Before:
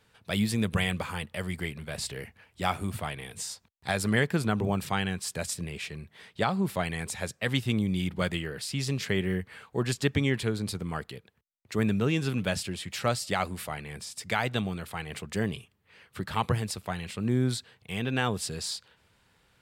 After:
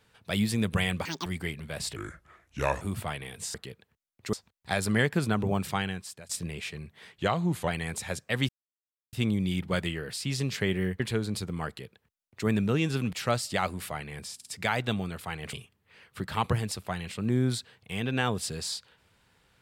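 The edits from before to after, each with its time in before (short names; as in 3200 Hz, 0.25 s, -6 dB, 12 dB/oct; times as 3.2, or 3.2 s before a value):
1.05–1.44 speed 187%
2.14–2.78 speed 75%
4.9–5.47 fade out, to -22 dB
6.3–6.8 speed 90%
7.61 insert silence 0.64 s
9.48–10.32 cut
11–11.79 copy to 3.51
12.45–12.9 cut
14.12 stutter 0.05 s, 3 plays
15.2–15.52 cut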